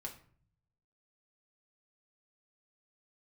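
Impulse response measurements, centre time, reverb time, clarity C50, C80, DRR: 14 ms, 0.50 s, 11.0 dB, 15.0 dB, -0.5 dB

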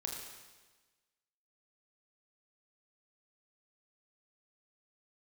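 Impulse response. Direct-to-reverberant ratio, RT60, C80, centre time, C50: -0.5 dB, 1.3 s, 3.5 dB, 63 ms, 2.5 dB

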